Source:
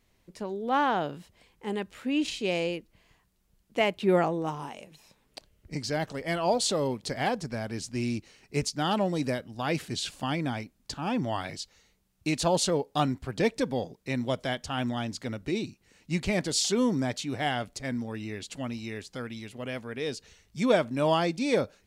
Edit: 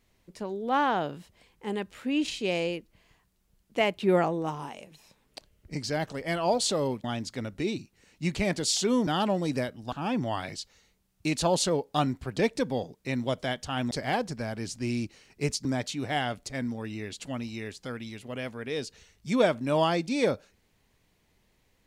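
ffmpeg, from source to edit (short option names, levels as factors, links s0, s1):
-filter_complex "[0:a]asplit=6[s0][s1][s2][s3][s4][s5];[s0]atrim=end=7.042[s6];[s1]atrim=start=14.918:end=16.952[s7];[s2]atrim=start=8.778:end=9.632[s8];[s3]atrim=start=10.928:end=14.922[s9];[s4]atrim=start=7.038:end=8.782[s10];[s5]atrim=start=16.948[s11];[s6][s7]acrossfade=d=0.004:c1=hsin:c2=hsin[s12];[s12][s8]acrossfade=d=0.004:c1=hsin:c2=hsin[s13];[s13][s9]acrossfade=d=0.004:c1=hsin:c2=hsin[s14];[s14][s10]acrossfade=d=0.004:c1=hsin:c2=hsin[s15];[s15][s11]acrossfade=d=0.004:c1=hsin:c2=hsin"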